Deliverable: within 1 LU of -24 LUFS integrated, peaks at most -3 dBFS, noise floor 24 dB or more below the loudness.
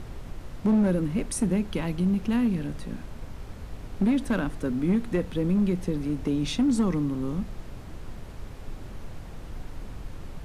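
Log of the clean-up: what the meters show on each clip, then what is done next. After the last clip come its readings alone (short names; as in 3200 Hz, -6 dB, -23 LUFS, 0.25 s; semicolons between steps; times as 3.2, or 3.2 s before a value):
clipped 1.0%; flat tops at -17.5 dBFS; noise floor -41 dBFS; noise floor target -51 dBFS; loudness -26.5 LUFS; peak -17.5 dBFS; loudness target -24.0 LUFS
-> clip repair -17.5 dBFS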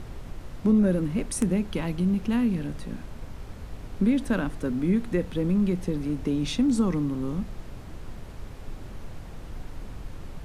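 clipped 0.0%; noise floor -41 dBFS; noise floor target -50 dBFS
-> noise print and reduce 9 dB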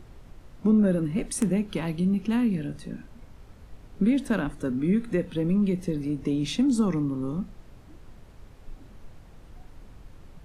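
noise floor -50 dBFS; loudness -26.0 LUFS; peak -9.0 dBFS; loudness target -24.0 LUFS
-> gain +2 dB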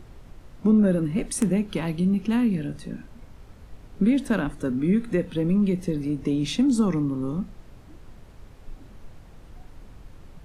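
loudness -24.0 LUFS; peak -7.0 dBFS; noise floor -48 dBFS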